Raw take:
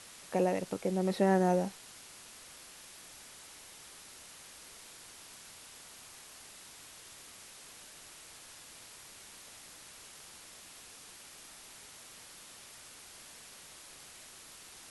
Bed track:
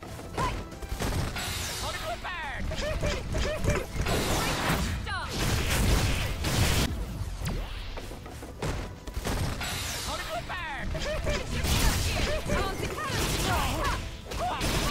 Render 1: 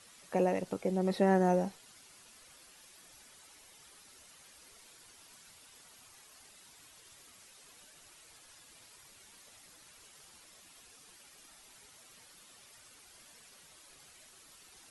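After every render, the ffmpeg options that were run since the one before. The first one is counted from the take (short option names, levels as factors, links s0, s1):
-af "afftdn=nr=9:nf=-53"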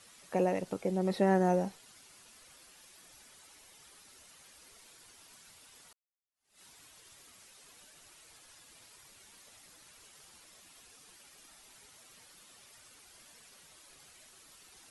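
-filter_complex "[0:a]asplit=2[s0][s1];[s0]atrim=end=5.93,asetpts=PTS-STARTPTS,afade=t=out:st=5.926:d=0.004:c=hsin[s2];[s1]atrim=start=5.93,asetpts=PTS-STARTPTS,afade=t=in:d=0.68:c=exp[s3];[s2][s3]concat=n=2:v=0:a=1"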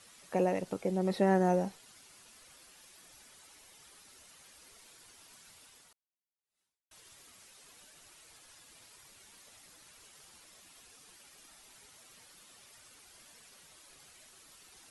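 -filter_complex "[0:a]asplit=2[s0][s1];[s0]atrim=end=6.91,asetpts=PTS-STARTPTS,afade=t=out:st=5.63:d=1.28:c=qua[s2];[s1]atrim=start=6.91,asetpts=PTS-STARTPTS,afade=t=in:d=0.004:c=hsin[s3];[s2][s3]concat=n=2:v=0:a=1"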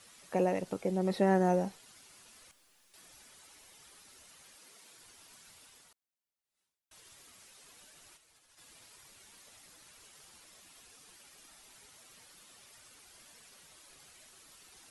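-filter_complex "[0:a]asettb=1/sr,asplit=3[s0][s1][s2];[s0]atrim=end=2.514[s3];[s1]atrim=start=2.51:end=2.94,asetpts=PTS-STARTPTS,afade=t=in:d=0.004:c=qsin,afade=t=out:st=0.426:d=0.004:c=qsin,aeval=exprs='(tanh(2000*val(0)+0.7)-tanh(0.7))/2000':c=same[s4];[s2]atrim=start=2.936[s5];[s3][s4]acrossfade=d=0.004:c1=hsin:c2=qsin[s6];[s6][s5]acrossfade=d=0.004:c1=qsin:c2=hsin,asettb=1/sr,asplit=3[s7][s8][s9];[s7]atrim=end=4.554[s10];[s8]atrim=start=4.55:end=4.97,asetpts=PTS-STARTPTS,afade=t=in:d=0.004:c=qsin,afade=t=out:st=0.416:d=0.004:c=qsin,highpass=f=130:w=0.5412,highpass=f=130:w=1.3066[s11];[s9]atrim=start=4.966[s12];[s10][s11]acrossfade=d=0.004:c1=hsin:c2=qsin[s13];[s13][s12]acrossfade=d=0.004:c1=qsin:c2=hsin,asplit=3[s14][s15][s16];[s14]afade=t=out:st=8.16:d=0.02[s17];[s15]agate=range=0.0224:threshold=0.00251:ratio=3:release=100:detection=peak,afade=t=in:st=8.16:d=0.02,afade=t=out:st=8.57:d=0.02[s18];[s16]afade=t=in:st=8.57:d=0.02[s19];[s17][s18][s19]amix=inputs=3:normalize=0"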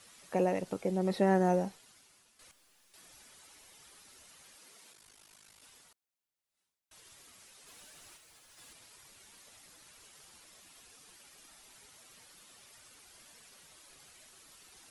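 -filter_complex "[0:a]asettb=1/sr,asplit=3[s0][s1][s2];[s0]atrim=end=4.924[s3];[s1]atrim=start=4.92:end=5.63,asetpts=PTS-STARTPTS,afade=t=in:d=0.004:c=qsin,afade=t=out:st=0.706:d=0.004:c=qsin,aeval=exprs='val(0)*sin(2*PI*26*n/s)':c=same[s4];[s2]atrim=start=5.626[s5];[s3][s4]acrossfade=d=0.004:c1=hsin:c2=qsin[s6];[s6][s5]acrossfade=d=0.004:c1=qsin:c2=hsin,asettb=1/sr,asplit=3[s7][s8][s9];[s7]atrim=end=7.674[s10];[s8]atrim=start=7.67:end=8.73,asetpts=PTS-STARTPTS,afade=t=in:d=0.004:c=qsin,afade=t=out:st=1.056:d=0.004:c=qsin,aeval=exprs='val(0)+0.5*0.001*sgn(val(0))':c=same[s11];[s9]atrim=start=8.726[s12];[s10][s11]acrossfade=d=0.004:c1=hsin:c2=qsin[s13];[s13][s12]acrossfade=d=0.004:c1=qsin:c2=hsin,asplit=2[s14][s15];[s14]atrim=end=2.39,asetpts=PTS-STARTPTS,afade=t=out:st=1.56:d=0.83:silence=0.251189[s16];[s15]atrim=start=2.39,asetpts=PTS-STARTPTS,afade=t=in:d=0.004:c=hsin:silence=0.251189[s17];[s16][s17]concat=n=2:v=0:a=1"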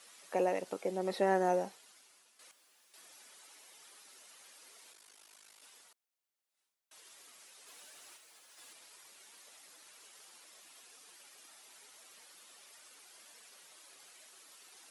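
-af "highpass=360"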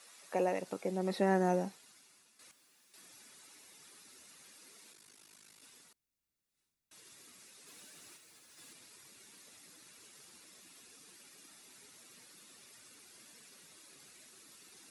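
-af "bandreject=f=3100:w=14,asubboost=boost=8:cutoff=240"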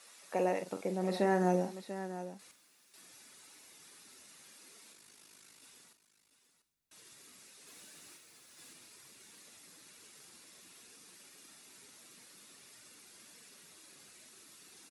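-af "aecho=1:1:44|691:0.335|0.266"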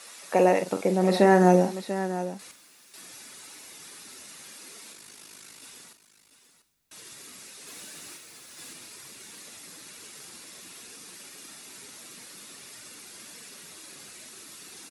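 -af "volume=3.76"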